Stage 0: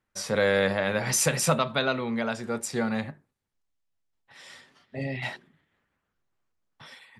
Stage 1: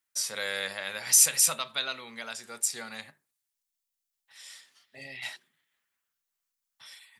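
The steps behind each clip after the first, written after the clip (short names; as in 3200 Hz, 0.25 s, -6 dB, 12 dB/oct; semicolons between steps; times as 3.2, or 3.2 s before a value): pre-emphasis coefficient 0.97; gain +6.5 dB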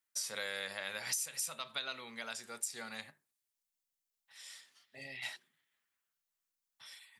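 compressor 12:1, threshold -30 dBFS, peak gain reduction 16 dB; gain -4 dB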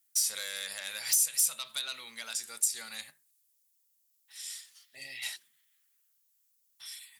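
sine folder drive 9 dB, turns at -19.5 dBFS; pre-emphasis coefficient 0.9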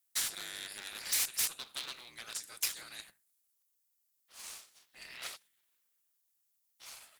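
cycle switcher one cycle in 3, inverted; gain -5.5 dB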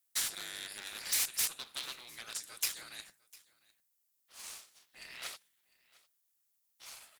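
echo 0.702 s -23.5 dB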